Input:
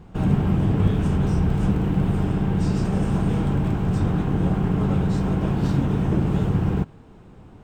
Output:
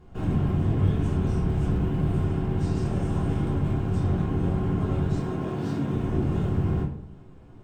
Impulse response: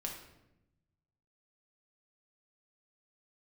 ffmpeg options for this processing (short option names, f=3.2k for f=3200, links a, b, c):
-filter_complex "[0:a]asettb=1/sr,asplit=3[a][b][c];[a]atrim=end=5.154[d];[b]atrim=start=5.15:end=5.94,asetpts=PTS-STARTPTS,afade=t=in:d=0.004:c=qsin,afade=t=out:st=0.786:d=0.004:c=qsin,highpass=140[e];[c]atrim=start=5.936[f];[d][e]acrossfade=d=0.004:c1=hsin:c2=qsin[g];[g][f]acrossfade=d=0.004:c1=qsin:c2=hsin[h];[1:a]atrim=start_sample=2205,asetrate=79380,aresample=44100[i];[h][i]afir=irnorm=-1:irlink=0"